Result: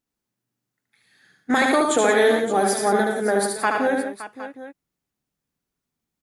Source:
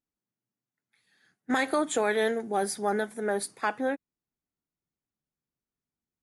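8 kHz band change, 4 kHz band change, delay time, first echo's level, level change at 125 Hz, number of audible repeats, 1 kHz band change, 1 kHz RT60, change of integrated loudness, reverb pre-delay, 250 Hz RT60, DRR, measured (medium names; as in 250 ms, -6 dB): +9.0 dB, +9.0 dB, 75 ms, -3.5 dB, no reading, 5, +9.0 dB, no reverb, +8.5 dB, no reverb, no reverb, no reverb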